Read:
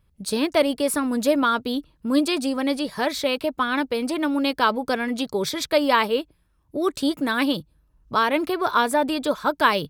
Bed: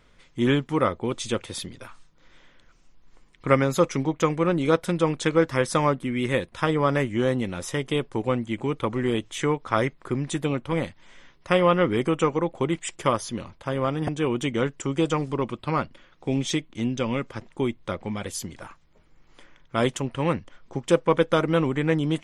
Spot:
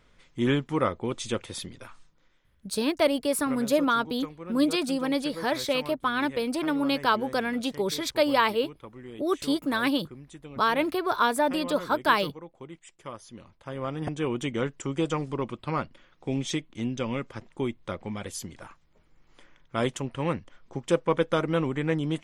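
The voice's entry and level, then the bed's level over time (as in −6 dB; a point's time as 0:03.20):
2.45 s, −3.5 dB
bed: 0:02.09 −3 dB
0:02.44 −18.5 dB
0:13.01 −18.5 dB
0:14.10 −4 dB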